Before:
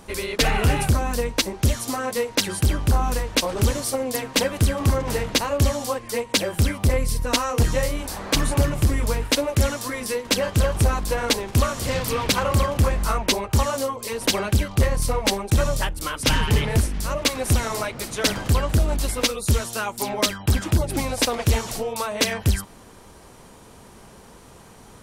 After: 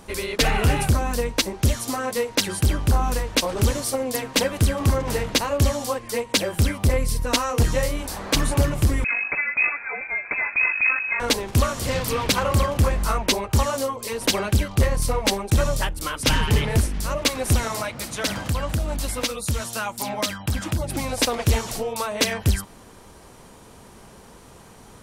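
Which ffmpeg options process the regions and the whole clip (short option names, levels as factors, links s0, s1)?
-filter_complex "[0:a]asettb=1/sr,asplit=3[s0][s1][s2];[s0]atrim=end=9.044[s3];[s1]atrim=start=9.04:end=11.2,asetpts=PTS-STARTPTS,afade=t=in:d=0.004:c=qsin,afade=t=out:st=2.156:d=0.004:c=qsin,aeval=exprs='clip(val(0),-1,0.0596)':c=same,lowpass=f=2200:t=q:w=0.5098,lowpass=f=2200:t=q:w=0.6013,lowpass=f=2200:t=q:w=0.9,lowpass=f=2200:t=q:w=2.563,afreqshift=-2600[s4];[s2]atrim=start=11.196[s5];[s3][s4]acrossfade=d=0.004:c1=hsin:c2=qsin[s6];[s6][s5]acrossfade=d=0.004:c1=qsin:c2=hsin,asettb=1/sr,asplit=3[s7][s8][s9];[s7]atrim=end=17.684[s10];[s8]atrim=start=17.68:end=21.13,asetpts=PTS-STARTPTS,afade=t=in:d=0.004:c=qsin,afade=t=out:st=3.446:d=0.004:c=qsin,highpass=45,equalizer=f=400:w=7.1:g=-12.5,acompressor=threshold=0.0794:ratio=2:attack=3.2:release=140:knee=1:detection=peak[s11];[s9]atrim=start=21.126[s12];[s10][s11]acrossfade=d=0.004:c1=hsin:c2=qsin[s13];[s13][s12]acrossfade=d=0.004:c1=qsin:c2=hsin"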